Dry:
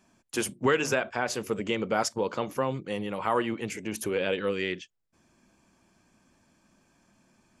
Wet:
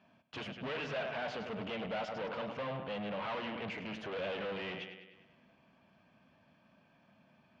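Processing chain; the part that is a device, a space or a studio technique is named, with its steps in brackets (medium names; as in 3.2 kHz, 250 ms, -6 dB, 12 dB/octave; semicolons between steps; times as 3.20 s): analogue delay pedal into a guitar amplifier (bucket-brigade echo 101 ms, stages 4096, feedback 56%, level -14 dB; valve stage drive 39 dB, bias 0.65; cabinet simulation 91–3700 Hz, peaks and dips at 150 Hz +3 dB, 350 Hz -9 dB, 630 Hz +6 dB, 2.9 kHz +4 dB); trim +2 dB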